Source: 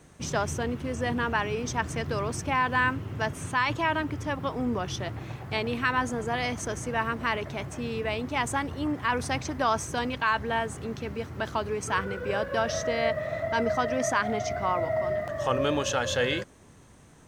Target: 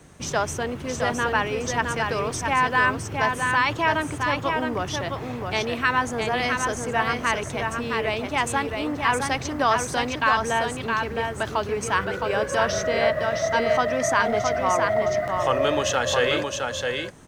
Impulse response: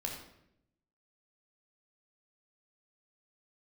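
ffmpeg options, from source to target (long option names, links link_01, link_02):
-filter_complex "[0:a]acrossover=split=350|1800[link_01][link_02][link_03];[link_01]asoftclip=type=tanh:threshold=-37dB[link_04];[link_04][link_02][link_03]amix=inputs=3:normalize=0,aecho=1:1:665:0.596,volume=4.5dB"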